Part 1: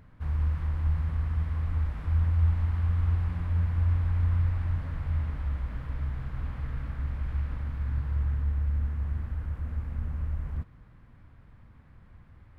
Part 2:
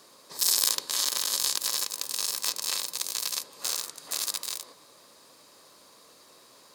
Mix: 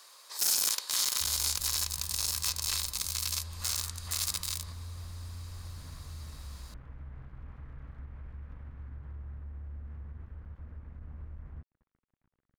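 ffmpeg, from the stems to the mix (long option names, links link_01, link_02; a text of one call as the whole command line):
ffmpeg -i stem1.wav -i stem2.wav -filter_complex "[0:a]lowpass=2400,alimiter=level_in=2.5dB:limit=-24dB:level=0:latency=1:release=68,volume=-2.5dB,aeval=exprs='sgn(val(0))*max(abs(val(0))-0.00422,0)':channel_layout=same,adelay=1000,volume=-9.5dB[link_01];[1:a]highpass=1000,asoftclip=type=hard:threshold=-21dB,volume=1.5dB[link_02];[link_01][link_02]amix=inputs=2:normalize=0,alimiter=limit=-21dB:level=0:latency=1:release=94" out.wav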